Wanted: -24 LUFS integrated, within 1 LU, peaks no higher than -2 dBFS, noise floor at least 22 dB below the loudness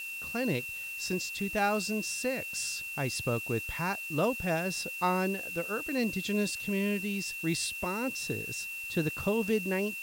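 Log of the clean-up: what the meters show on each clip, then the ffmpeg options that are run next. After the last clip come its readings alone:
steady tone 2.7 kHz; tone level -37 dBFS; noise floor -40 dBFS; noise floor target -54 dBFS; loudness -31.5 LUFS; peak level -16.0 dBFS; loudness target -24.0 LUFS
-> -af "bandreject=f=2700:w=30"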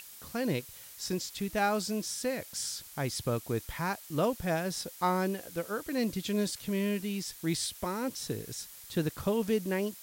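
steady tone not found; noise floor -50 dBFS; noise floor target -55 dBFS
-> -af "afftdn=nr=6:nf=-50"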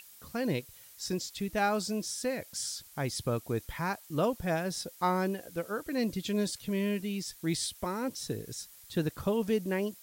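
noise floor -54 dBFS; noise floor target -55 dBFS
-> -af "afftdn=nr=6:nf=-54"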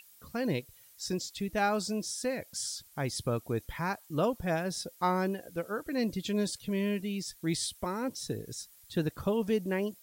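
noise floor -58 dBFS; loudness -33.5 LUFS; peak level -16.5 dBFS; loudness target -24.0 LUFS
-> -af "volume=2.99"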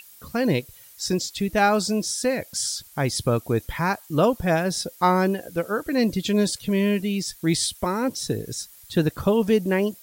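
loudness -24.0 LUFS; peak level -7.0 dBFS; noise floor -49 dBFS

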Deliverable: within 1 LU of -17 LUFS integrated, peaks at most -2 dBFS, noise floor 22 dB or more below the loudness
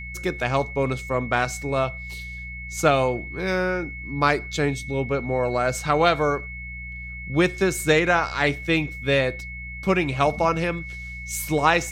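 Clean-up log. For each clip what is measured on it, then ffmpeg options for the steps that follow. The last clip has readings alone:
hum 60 Hz; highest harmonic 180 Hz; hum level -35 dBFS; steady tone 2.2 kHz; tone level -35 dBFS; loudness -23.0 LUFS; peak level -5.0 dBFS; loudness target -17.0 LUFS
-> -af "bandreject=f=60:t=h:w=4,bandreject=f=120:t=h:w=4,bandreject=f=180:t=h:w=4"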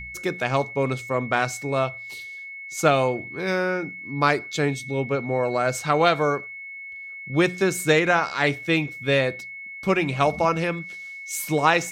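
hum not found; steady tone 2.2 kHz; tone level -35 dBFS
-> -af "bandreject=f=2200:w=30"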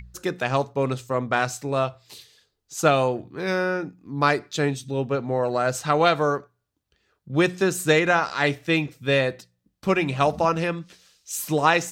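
steady tone not found; loudness -23.5 LUFS; peak level -5.0 dBFS; loudness target -17.0 LUFS
-> -af "volume=2.11,alimiter=limit=0.794:level=0:latency=1"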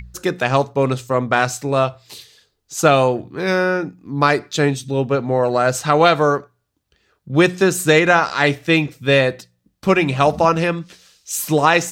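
loudness -17.5 LUFS; peak level -2.0 dBFS; noise floor -71 dBFS

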